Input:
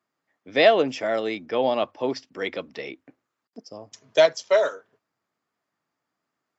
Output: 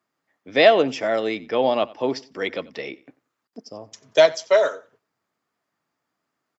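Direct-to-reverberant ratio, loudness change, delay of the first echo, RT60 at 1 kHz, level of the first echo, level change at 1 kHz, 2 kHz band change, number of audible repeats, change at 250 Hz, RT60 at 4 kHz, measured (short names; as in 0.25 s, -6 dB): none, +2.5 dB, 91 ms, none, -21.5 dB, +2.5 dB, +2.5 dB, 2, +2.5 dB, none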